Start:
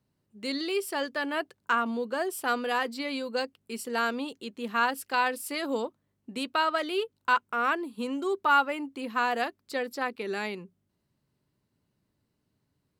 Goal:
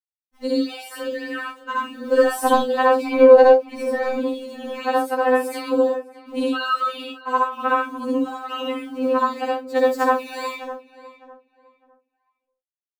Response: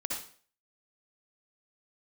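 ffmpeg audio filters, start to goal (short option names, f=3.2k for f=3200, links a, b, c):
-filter_complex "[0:a]asettb=1/sr,asplit=3[a][b][c];[a]atrim=end=3.094[d];[b]atrim=start=3.09:end=4.09,asetpts=PTS-STARTPTS,afade=t=in:d=0.004:c=qsin,afade=t=out:st=0.996:d=0.004:c=qsin,asplit=2[e][f];[f]highpass=f=720:p=1,volume=19dB,asoftclip=type=tanh:threshold=-14dB[g];[e][g]amix=inputs=2:normalize=0,lowpass=f=1.1k:p=1,volume=-6dB[h];[c]atrim=start=4.086[i];[d][h]acrossfade=d=0.004:c1=hsin:c2=qsin[j];[j][i]acrossfade=d=0.004:c1=qsin:c2=hsin,equalizer=f=650:w=0.55:g=10,aeval=exprs='val(0)*gte(abs(val(0)),0.00596)':c=same,asettb=1/sr,asplit=3[k][l][m];[k]atrim=end=2.054[n];[l]atrim=start=2.05:end=2.56,asetpts=PTS-STARTPTS,afade=t=in:d=0.004:c=qsin,afade=t=out:st=0.506:d=0.004:c=qsin,acontrast=85[o];[m]atrim=start=2.556[p];[n][o]acrossfade=d=0.004:c1=hsin:c2=qsin[q];[q][p]acrossfade=d=0.004:c1=qsin:c2=hsin,asettb=1/sr,asplit=3[r][s][t];[r]atrim=end=9.764[u];[s]atrim=start=9.76:end=10.45,asetpts=PTS-STARTPTS,afade=t=in:d=0.004:c=qsin,afade=t=out:st=0.686:d=0.004:c=qsin,highshelf=f=3.9k:g=11[v];[t]atrim=start=10.446[w];[u][v]acrossfade=d=0.004:c1=hsin:c2=qsin[x];[x][w]acrossfade=d=0.004:c1=qsin:c2=hsin,asplit=2[y][z];[z]adelay=606,lowpass=f=2k:p=1,volume=-15dB,asplit=2[aa][ab];[ab]adelay=606,lowpass=f=2k:p=1,volume=0.26,asplit=2[ac][ad];[ad]adelay=606,lowpass=f=2k:p=1,volume=0.26[ae];[y][aa][ac][ae]amix=inputs=4:normalize=0[af];[1:a]atrim=start_sample=2205,atrim=end_sample=6615[ag];[af][ag]afir=irnorm=-1:irlink=0,afftfilt=real='re*3.46*eq(mod(b,12),0)':imag='im*3.46*eq(mod(b,12),0)':win_size=2048:overlap=0.75,volume=-1dB"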